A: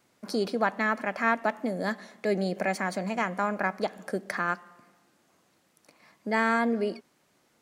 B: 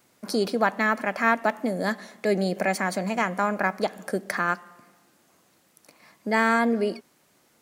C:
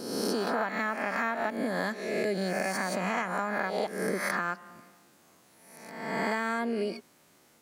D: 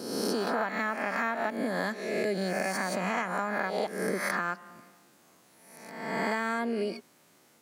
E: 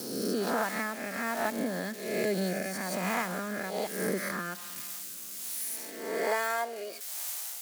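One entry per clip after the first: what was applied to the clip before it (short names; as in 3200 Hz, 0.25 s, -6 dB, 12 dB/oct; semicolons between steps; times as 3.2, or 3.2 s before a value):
high shelf 9700 Hz +9 dB; gain +3.5 dB
spectral swells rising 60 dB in 1.04 s; compressor, threshold -25 dBFS, peak gain reduction 11 dB; gain -1.5 dB
HPF 95 Hz
switching spikes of -28.5 dBFS; rotary speaker horn 1.2 Hz; high-pass sweep 87 Hz -> 720 Hz, 4.6–6.68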